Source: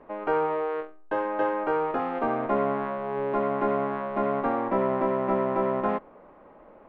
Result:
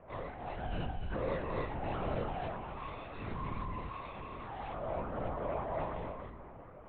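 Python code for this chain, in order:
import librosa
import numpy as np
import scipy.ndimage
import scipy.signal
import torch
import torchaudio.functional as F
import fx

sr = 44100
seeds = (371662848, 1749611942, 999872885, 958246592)

y = scipy.signal.sosfilt(scipy.signal.butter(2, 41.0, 'highpass', fs=sr, output='sos'), x)
y = fx.hum_notches(y, sr, base_hz=50, count=8)
y = fx.over_compress(y, sr, threshold_db=-30.0, ratio=-0.5)
y = np.clip(10.0 ** (33.5 / 20.0) * y, -1.0, 1.0) / 10.0 ** (33.5 / 20.0)
y = fx.resonator_bank(y, sr, root=57, chord='minor', decay_s=0.35)
y = y + 10.0 ** (-8.5 / 20.0) * np.pad(y, (int(278 * sr / 1000.0), 0))[:len(y)]
y = fx.rev_freeverb(y, sr, rt60_s=3.6, hf_ratio=0.75, predelay_ms=30, drr_db=17.0)
y = fx.lpc_vocoder(y, sr, seeds[0], excitation='whisper', order=10)
y = y * 10.0 ** (11.0 / 20.0)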